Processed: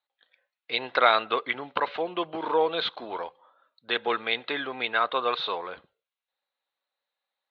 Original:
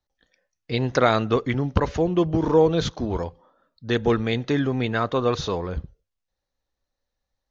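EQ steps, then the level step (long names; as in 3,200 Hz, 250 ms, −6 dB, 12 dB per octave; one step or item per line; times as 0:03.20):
high-pass filter 860 Hz 12 dB per octave
Chebyshev low-pass filter 4,000 Hz, order 5
notch filter 1,800 Hz, Q 13
+4.0 dB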